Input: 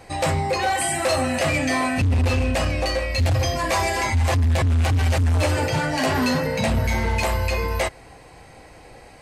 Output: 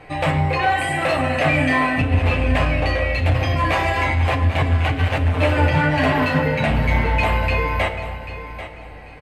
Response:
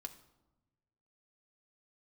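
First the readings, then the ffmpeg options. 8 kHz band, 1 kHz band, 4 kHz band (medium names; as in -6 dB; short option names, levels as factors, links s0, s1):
-12.0 dB, +3.5 dB, -0.5 dB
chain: -filter_complex "[0:a]highshelf=f=4000:t=q:w=1.5:g=-12.5,aecho=1:1:790|1580|2370:0.237|0.0593|0.0148[s0];[1:a]atrim=start_sample=2205,asetrate=26901,aresample=44100[s1];[s0][s1]afir=irnorm=-1:irlink=0,volume=1.58"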